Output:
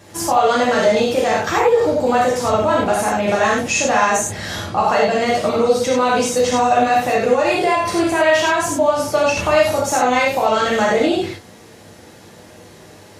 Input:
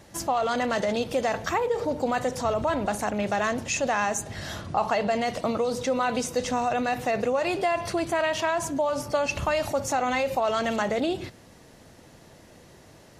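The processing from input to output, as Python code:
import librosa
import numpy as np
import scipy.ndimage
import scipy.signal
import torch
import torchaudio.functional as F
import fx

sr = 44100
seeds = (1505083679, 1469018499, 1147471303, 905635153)

y = scipy.signal.sosfilt(scipy.signal.butter(2, 83.0, 'highpass', fs=sr, output='sos'), x)
y = fx.rev_gated(y, sr, seeds[0], gate_ms=120, shape='flat', drr_db=-5.0)
y = y * 10.0 ** (4.0 / 20.0)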